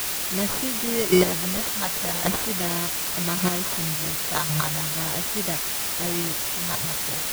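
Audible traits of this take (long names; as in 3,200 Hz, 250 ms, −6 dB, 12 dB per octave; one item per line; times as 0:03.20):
phaser sweep stages 2, 0.4 Hz, lowest notch 350–2,000 Hz
aliases and images of a low sample rate 2,600 Hz, jitter 0%
chopped level 0.89 Hz, depth 65%, duty 10%
a quantiser's noise floor 6 bits, dither triangular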